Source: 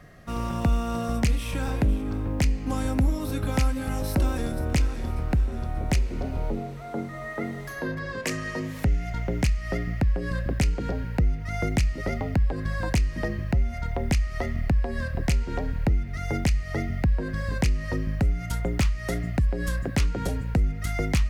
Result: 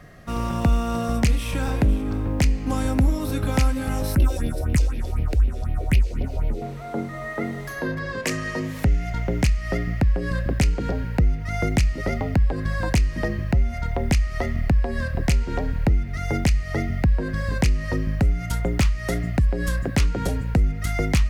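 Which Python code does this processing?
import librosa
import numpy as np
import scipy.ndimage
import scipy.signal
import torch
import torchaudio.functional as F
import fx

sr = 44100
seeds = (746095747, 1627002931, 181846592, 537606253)

y = fx.phaser_stages(x, sr, stages=4, low_hz=170.0, high_hz=1300.0, hz=4.0, feedback_pct=40, at=(4.15, 6.62))
y = F.gain(torch.from_numpy(y), 3.5).numpy()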